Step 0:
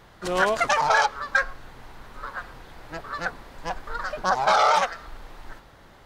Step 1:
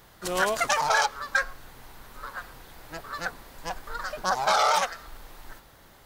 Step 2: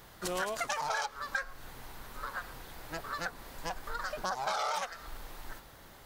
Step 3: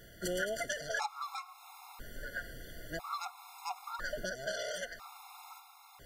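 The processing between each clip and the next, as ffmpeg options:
-af "aemphasis=mode=production:type=50fm,volume=0.668"
-af "acompressor=threshold=0.02:ratio=3"
-af "afftfilt=real='re*gt(sin(2*PI*0.5*pts/sr)*(1-2*mod(floor(b*sr/1024/700),2)),0)':imag='im*gt(sin(2*PI*0.5*pts/sr)*(1-2*mod(floor(b*sr/1024/700),2)),0)':win_size=1024:overlap=0.75,volume=1.12"

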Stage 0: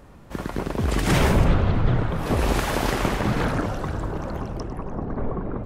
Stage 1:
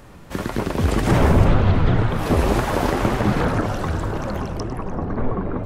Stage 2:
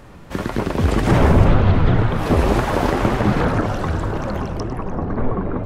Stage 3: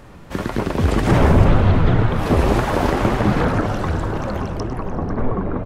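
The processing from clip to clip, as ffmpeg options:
-filter_complex "[0:a]acrossover=split=1500[s0][s1];[s0]flanger=delay=7.6:depth=5.2:regen=47:speed=1.9:shape=triangular[s2];[s1]acompressor=threshold=0.00891:ratio=6[s3];[s2][s3]amix=inputs=2:normalize=0,volume=2.51"
-af "highshelf=f=6500:g=-6.5,volume=1.26"
-af "aecho=1:1:492:0.158"

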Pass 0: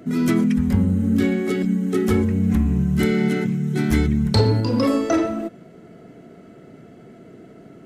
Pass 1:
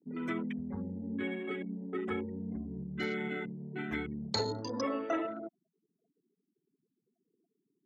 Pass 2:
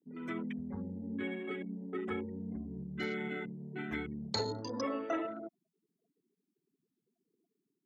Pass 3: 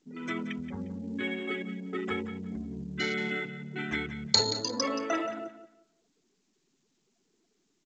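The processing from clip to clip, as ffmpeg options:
-af "afftfilt=real='re*gte(hypot(re,im),0.0355)':imag='im*gte(hypot(re,im),0.0355)':win_size=1024:overlap=0.75,highpass=f=800:p=1,afwtdn=0.0126,volume=0.422"
-af "dynaudnorm=f=120:g=5:m=1.78,volume=0.447"
-af "aecho=1:1:177|354|531:0.251|0.0578|0.0133,crystalizer=i=5:c=0,volume=1.41" -ar 16000 -c:a pcm_mulaw

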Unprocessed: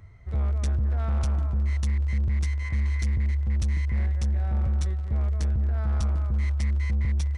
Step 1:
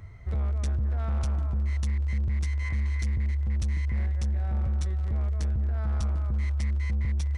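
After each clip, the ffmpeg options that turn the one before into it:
-af "alimiter=level_in=1.5:limit=0.0631:level=0:latency=1,volume=0.668,volume=1.58"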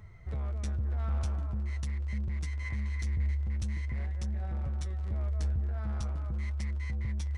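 -af "flanger=delay=4.6:depth=8.2:regen=52:speed=0.46:shape=triangular"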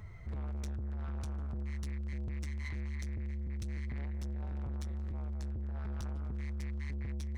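-af "alimiter=level_in=2:limit=0.0631:level=0:latency=1:release=36,volume=0.501,asoftclip=type=tanh:threshold=0.0112,volume=1.41"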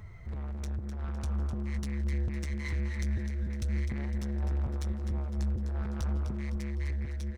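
-filter_complex "[0:a]dynaudnorm=f=300:g=7:m=1.58,asplit=2[s0][s1];[s1]asplit=5[s2][s3][s4][s5][s6];[s2]adelay=254,afreqshift=-140,volume=0.376[s7];[s3]adelay=508,afreqshift=-280,volume=0.18[s8];[s4]adelay=762,afreqshift=-420,volume=0.0861[s9];[s5]adelay=1016,afreqshift=-560,volume=0.0417[s10];[s6]adelay=1270,afreqshift=-700,volume=0.02[s11];[s7][s8][s9][s10][s11]amix=inputs=5:normalize=0[s12];[s0][s12]amix=inputs=2:normalize=0,volume=1.19"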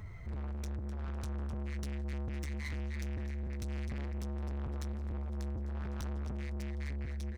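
-af "asoftclip=type=tanh:threshold=0.0133,volume=1.19"

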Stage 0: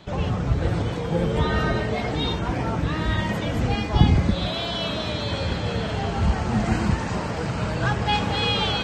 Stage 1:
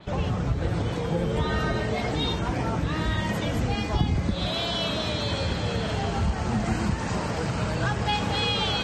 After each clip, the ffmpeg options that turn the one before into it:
-af "acompressor=threshold=0.0708:ratio=2.5,adynamicequalizer=threshold=0.00794:dfrequency=4800:dqfactor=0.7:tfrequency=4800:tqfactor=0.7:attack=5:release=100:ratio=0.375:range=2.5:mode=boostabove:tftype=highshelf"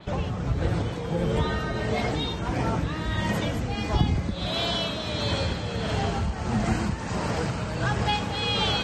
-af "tremolo=f=1.5:d=0.44,volume=1.19"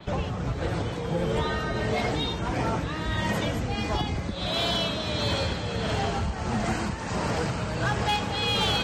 -filter_complex "[0:a]acrossover=split=340|720|5700[s0][s1][s2][s3];[s0]alimiter=limit=0.0708:level=0:latency=1:release=476[s4];[s4][s1][s2][s3]amix=inputs=4:normalize=0,asoftclip=type=hard:threshold=0.1,volume=1.12"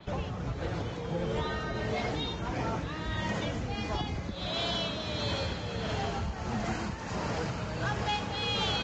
-af "aresample=16000,aresample=44100,volume=0.531"

